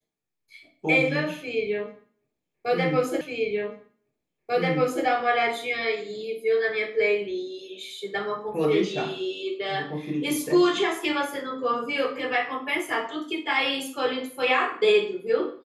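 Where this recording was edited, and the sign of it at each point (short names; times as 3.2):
3.21 repeat of the last 1.84 s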